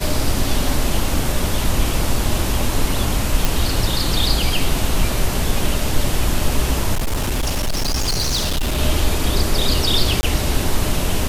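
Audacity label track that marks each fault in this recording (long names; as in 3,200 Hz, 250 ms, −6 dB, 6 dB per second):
3.450000	3.450000	click
6.940000	8.790000	clipping −16 dBFS
10.210000	10.230000	drop-out 20 ms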